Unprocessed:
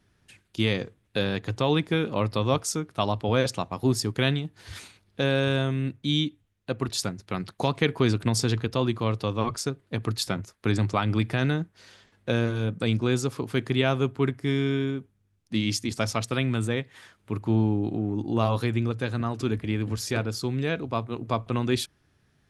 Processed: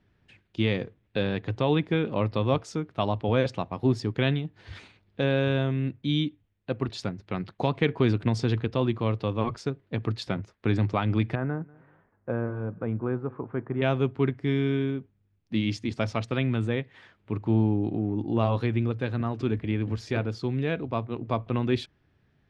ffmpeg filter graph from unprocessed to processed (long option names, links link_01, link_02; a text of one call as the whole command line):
ffmpeg -i in.wav -filter_complex "[0:a]asettb=1/sr,asplit=3[link_01][link_02][link_03];[link_01]atrim=end=11.354[link_04];[link_02]atrim=start=11.35:end=13.82,asetpts=PTS-STARTPTS,afade=type=in:duration=0.004:curve=qsin,afade=type=out:start_time=2.466:duration=0.004:curve=qsin,lowpass=frequency=1300:width=0.5412,lowpass=frequency=1300:width=1.3066,tiltshelf=frequency=880:gain=-5.5,aecho=1:1:192|384:0.0631|0.0246,atrim=end_sample=108927[link_05];[link_03]atrim=start=13.816[link_06];[link_04][link_05]acrossfade=duration=0.004:curve1=hsin:curve2=qsin[link_07];[link_07][link_06]acrossfade=duration=0.004:curve1=qsin:curve2=hsin,lowpass=2900,equalizer=frequency=1300:width=1.6:gain=-3.5" out.wav